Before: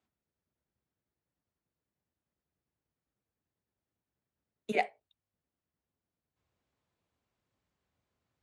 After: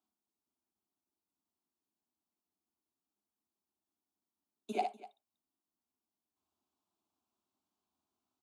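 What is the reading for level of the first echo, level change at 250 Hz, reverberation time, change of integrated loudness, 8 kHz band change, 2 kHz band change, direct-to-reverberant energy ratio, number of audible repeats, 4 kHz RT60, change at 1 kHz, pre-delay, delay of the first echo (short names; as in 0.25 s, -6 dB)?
-6.0 dB, -4.0 dB, none, -4.5 dB, -1.5 dB, -14.5 dB, none, 2, none, -2.0 dB, none, 59 ms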